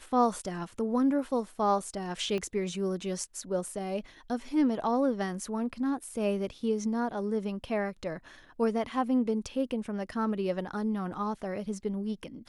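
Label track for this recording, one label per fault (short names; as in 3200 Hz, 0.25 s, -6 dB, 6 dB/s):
2.380000	2.380000	pop -23 dBFS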